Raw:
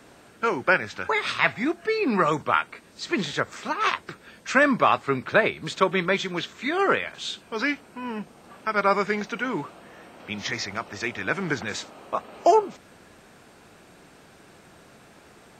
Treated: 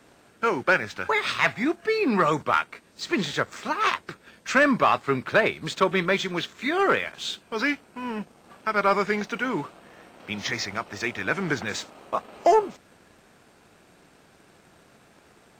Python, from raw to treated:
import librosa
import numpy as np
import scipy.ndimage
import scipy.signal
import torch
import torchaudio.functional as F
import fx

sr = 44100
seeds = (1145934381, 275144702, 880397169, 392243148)

y = fx.leveller(x, sr, passes=1)
y = y * 10.0 ** (-3.0 / 20.0)